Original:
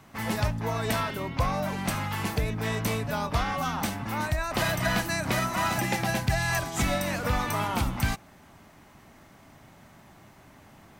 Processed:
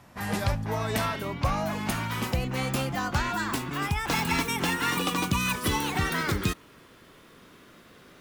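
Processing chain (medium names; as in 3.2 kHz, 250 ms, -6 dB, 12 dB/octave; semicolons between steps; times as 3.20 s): gliding tape speed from 89% -> 179%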